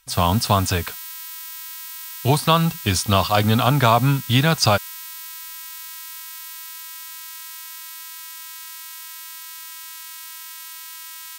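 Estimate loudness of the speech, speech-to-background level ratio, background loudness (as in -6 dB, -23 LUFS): -19.0 LUFS, 14.0 dB, -33.0 LUFS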